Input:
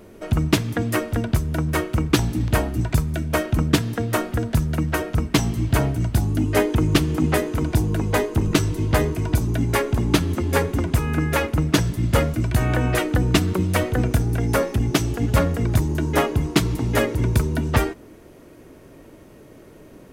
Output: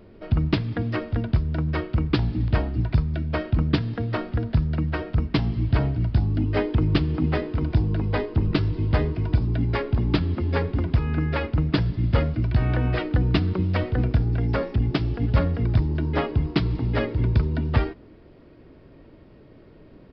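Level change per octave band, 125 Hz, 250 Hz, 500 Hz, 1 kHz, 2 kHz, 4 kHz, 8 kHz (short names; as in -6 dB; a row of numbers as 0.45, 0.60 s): -1.0 dB, -3.5 dB, -5.5 dB, -6.0 dB, -6.5 dB, -7.0 dB, under -30 dB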